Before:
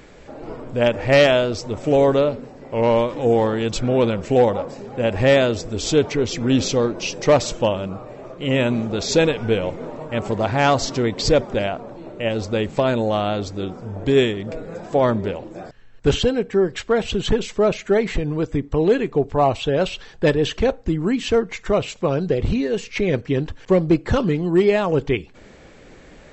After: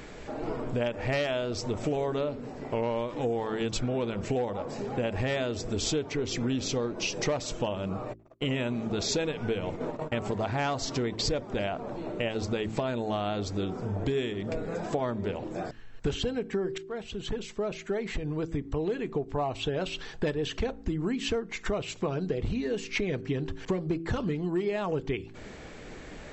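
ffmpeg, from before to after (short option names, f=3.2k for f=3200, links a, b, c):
-filter_complex "[0:a]asplit=3[a][b][c];[a]afade=t=out:st=8.12:d=0.02[d];[b]agate=range=-49dB:threshold=-33dB:ratio=16:release=100:detection=peak,afade=t=in:st=8.12:d=0.02,afade=t=out:st=11.27:d=0.02[e];[c]afade=t=in:st=11.27:d=0.02[f];[d][e][f]amix=inputs=3:normalize=0,asplit=2[g][h];[g]atrim=end=16.78,asetpts=PTS-STARTPTS,afade=t=out:st=16.776:d=0.004:c=hsin:silence=0.0707946[i];[h]atrim=start=16.78,asetpts=PTS-STARTPTS,afade=t=in:d=3.47:silence=0.0707946[j];[i][j]concat=n=2:v=0:a=1,bandreject=f=540:w=12,bandreject=f=55.13:t=h:w=4,bandreject=f=110.26:t=h:w=4,bandreject=f=165.39:t=h:w=4,bandreject=f=220.52:t=h:w=4,bandreject=f=275.65:t=h:w=4,bandreject=f=330.78:t=h:w=4,bandreject=f=385.91:t=h:w=4,acompressor=threshold=-29dB:ratio=6,volume=1.5dB"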